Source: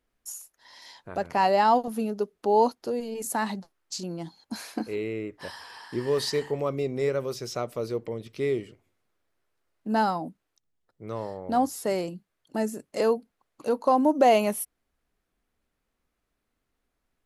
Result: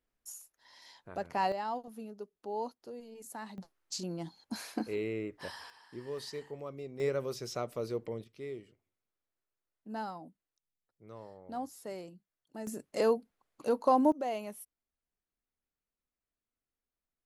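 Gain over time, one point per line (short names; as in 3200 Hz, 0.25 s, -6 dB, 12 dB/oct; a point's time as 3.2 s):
-8 dB
from 1.52 s -16 dB
from 3.58 s -4 dB
from 5.7 s -14.5 dB
from 7 s -5.5 dB
from 8.24 s -15 dB
from 12.67 s -4 dB
from 14.12 s -16.5 dB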